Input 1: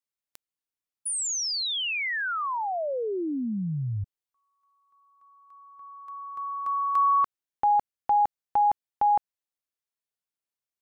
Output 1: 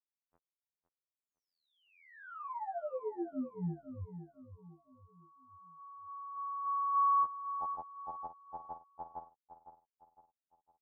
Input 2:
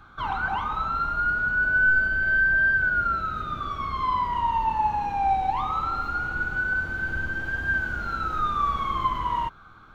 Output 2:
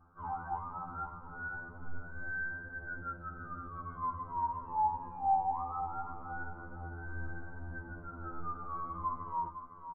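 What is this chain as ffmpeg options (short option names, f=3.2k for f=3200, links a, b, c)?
-af "lowpass=f=1.1k:w=0.5412,lowpass=f=1.1k:w=1.3066,aecho=1:1:508|1016|1524|2032:0.299|0.119|0.0478|0.0191,afftfilt=real='re*2*eq(mod(b,4),0)':imag='im*2*eq(mod(b,4),0)':win_size=2048:overlap=0.75,volume=-8dB"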